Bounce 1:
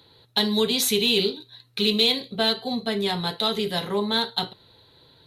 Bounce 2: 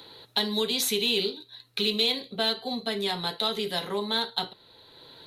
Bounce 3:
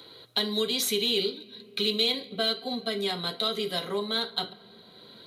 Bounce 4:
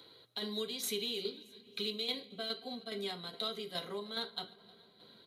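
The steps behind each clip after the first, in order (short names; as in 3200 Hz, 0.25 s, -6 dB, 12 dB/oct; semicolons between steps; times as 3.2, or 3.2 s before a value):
bell 96 Hz -9 dB 2 oct; three-band squash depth 40%; gain -3.5 dB
notch comb 880 Hz; on a send at -18.5 dB: reverb RT60 3.3 s, pre-delay 3 ms
tremolo saw down 2.4 Hz, depth 55%; feedback echo 0.311 s, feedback 60%, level -23.5 dB; gain -8 dB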